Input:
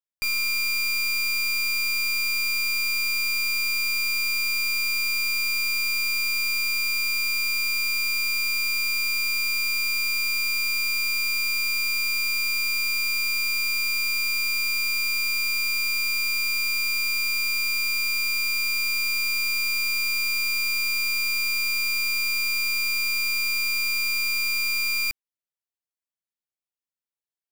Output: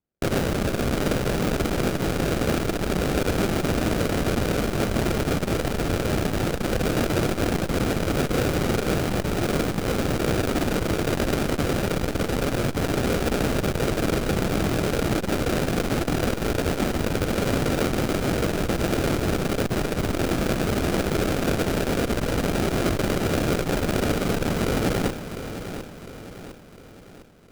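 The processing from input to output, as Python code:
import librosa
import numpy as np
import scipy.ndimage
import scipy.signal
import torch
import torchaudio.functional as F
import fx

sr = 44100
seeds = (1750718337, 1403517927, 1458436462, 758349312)

y = scipy.signal.sosfilt(scipy.signal.butter(4, 790.0, 'highpass', fs=sr, output='sos'), x)
y = fx.notch(y, sr, hz=2100.0, q=16.0)
y = y + 0.46 * np.pad(y, (int(1.1 * sr / 1000.0), 0))[:len(y)]
y = fx.sample_hold(y, sr, seeds[0], rate_hz=1000.0, jitter_pct=20)
y = fx.echo_feedback(y, sr, ms=705, feedback_pct=47, wet_db=-12.0)
y = fx.transformer_sat(y, sr, knee_hz=120.0)
y = y * librosa.db_to_amplitude(4.5)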